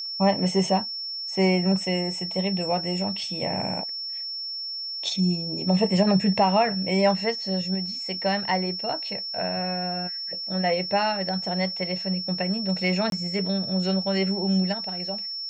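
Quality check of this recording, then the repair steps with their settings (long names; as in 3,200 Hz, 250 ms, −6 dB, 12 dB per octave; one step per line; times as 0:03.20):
whistle 5,400 Hz −30 dBFS
0:13.10–0:13.12: drop-out 22 ms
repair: notch filter 5,400 Hz, Q 30
repair the gap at 0:13.10, 22 ms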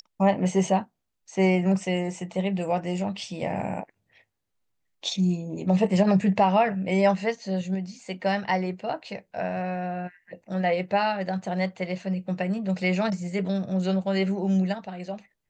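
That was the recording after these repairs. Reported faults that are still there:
none of them is left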